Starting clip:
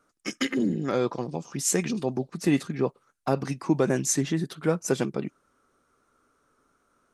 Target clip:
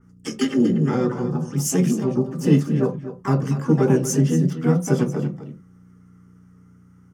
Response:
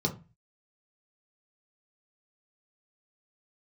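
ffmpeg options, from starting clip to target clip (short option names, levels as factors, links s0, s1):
-filter_complex "[0:a]aeval=exprs='val(0)+0.00112*(sin(2*PI*60*n/s)+sin(2*PI*2*60*n/s)/2+sin(2*PI*3*60*n/s)/3+sin(2*PI*4*60*n/s)/4+sin(2*PI*5*60*n/s)/5)':c=same,aecho=1:1:239:0.251,asplit=2[s0][s1];[s1]asetrate=66075,aresample=44100,atempo=0.66742,volume=0.562[s2];[s0][s2]amix=inputs=2:normalize=0,asplit=2[s3][s4];[1:a]atrim=start_sample=2205,afade=t=out:st=0.17:d=0.01,atrim=end_sample=7938[s5];[s4][s5]afir=irnorm=-1:irlink=0,volume=0.355[s6];[s3][s6]amix=inputs=2:normalize=0,adynamicequalizer=threshold=0.00794:dfrequency=2700:dqfactor=0.7:tfrequency=2700:tqfactor=0.7:attack=5:release=100:ratio=0.375:range=2:mode=cutabove:tftype=highshelf"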